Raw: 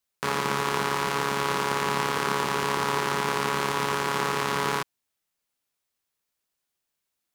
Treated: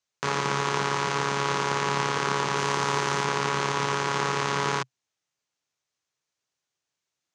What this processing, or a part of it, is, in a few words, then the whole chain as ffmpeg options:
car door speaker: -filter_complex "[0:a]asettb=1/sr,asplit=3[a][b][c];[a]atrim=end=2.564[d];[b]atrim=start=2.56:end=3.25,asetpts=PTS-STARTPTS,afade=t=in:d=0.004:c=qsin,afade=t=out:st=0.686:d=0.004:c=qsin,highshelf=f=9.7k:g=8.5[e];[c]atrim=start=3.246[f];[d][e]acrossfade=d=0.004:c1=hsin:c2=qsin[g];[g][f]acrossfade=d=0.004:c1=qsin:c2=hsin,highpass=84,equalizer=f=130:t=q:w=4:g=6,equalizer=f=220:t=q:w=4:g=-5,equalizer=f=6.3k:t=q:w=4:g=5,lowpass=f=7.2k:w=0.5412,lowpass=f=7.2k:w=1.3066"

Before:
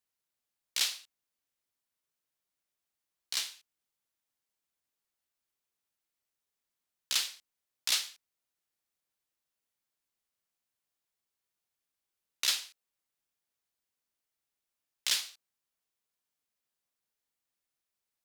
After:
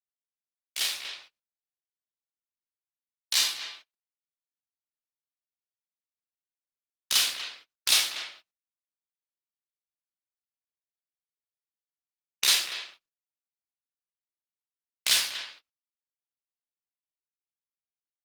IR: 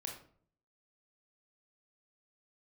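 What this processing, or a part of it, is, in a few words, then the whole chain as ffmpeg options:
speakerphone in a meeting room: -filter_complex "[1:a]atrim=start_sample=2205[a];[0:a][a]afir=irnorm=-1:irlink=0,asplit=2[b][c];[c]adelay=240,highpass=300,lowpass=3.4k,asoftclip=type=hard:threshold=-28dB,volume=-9dB[d];[b][d]amix=inputs=2:normalize=0,dynaudnorm=f=140:g=13:m=16dB,agate=range=-30dB:threshold=-45dB:ratio=16:detection=peak,volume=-3dB" -ar 48000 -c:a libopus -b:a 24k

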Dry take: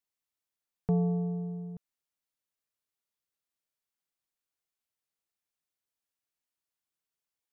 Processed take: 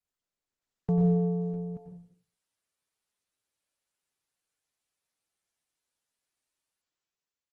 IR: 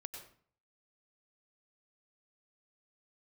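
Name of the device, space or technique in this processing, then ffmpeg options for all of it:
speakerphone in a meeting room: -filter_complex "[1:a]atrim=start_sample=2205[a];[0:a][a]afir=irnorm=-1:irlink=0,asplit=2[b][c];[c]adelay=160,highpass=300,lowpass=3.4k,asoftclip=type=hard:threshold=-32.5dB,volume=-17dB[d];[b][d]amix=inputs=2:normalize=0,dynaudnorm=f=250:g=7:m=11dB,volume=-2dB" -ar 48000 -c:a libopus -b:a 16k

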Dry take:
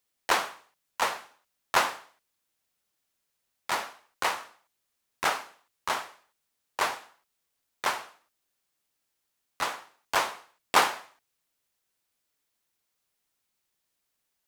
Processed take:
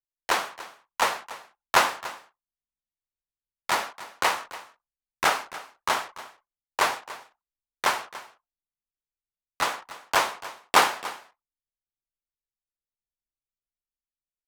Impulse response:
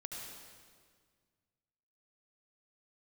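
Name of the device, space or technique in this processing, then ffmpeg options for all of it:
voice memo with heavy noise removal: -af "anlmdn=0.01,dynaudnorm=f=160:g=9:m=4.5dB,aecho=1:1:288:0.15"

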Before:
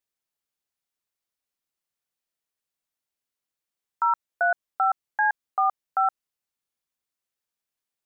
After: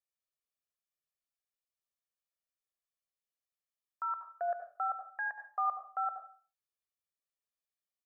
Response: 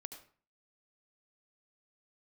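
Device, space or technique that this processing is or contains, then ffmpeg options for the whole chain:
microphone above a desk: -filter_complex "[0:a]aecho=1:1:1.7:0.88[a];[1:a]atrim=start_sample=2205[b];[a][b]afir=irnorm=-1:irlink=0,volume=-8.5dB"

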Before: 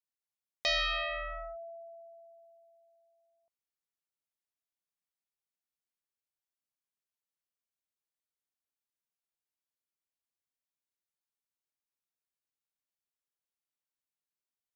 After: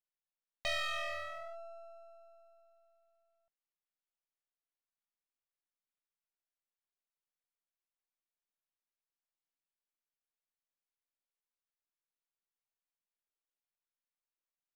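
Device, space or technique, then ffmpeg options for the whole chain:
crystal radio: -af "highpass=380,lowpass=3k,aeval=exprs='if(lt(val(0),0),0.251*val(0),val(0))':c=same"

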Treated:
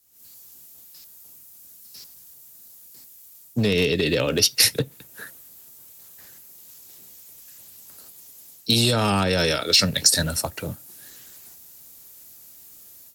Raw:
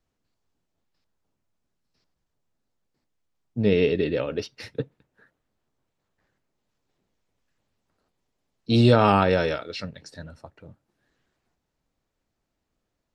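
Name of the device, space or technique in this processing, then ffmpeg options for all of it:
FM broadcast chain: -filter_complex "[0:a]highpass=64,dynaudnorm=f=120:g=3:m=17dB,acrossover=split=190|380[a][b][c];[a]acompressor=threshold=-19dB:ratio=4[d];[b]acompressor=threshold=-26dB:ratio=4[e];[c]acompressor=threshold=-22dB:ratio=4[f];[d][e][f]amix=inputs=3:normalize=0,aemphasis=mode=production:type=75fm,alimiter=limit=-11.5dB:level=0:latency=1:release=65,asoftclip=type=hard:threshold=-13.5dB,lowpass=f=15k:w=0.5412,lowpass=f=15k:w=1.3066,aemphasis=mode=production:type=75fm"

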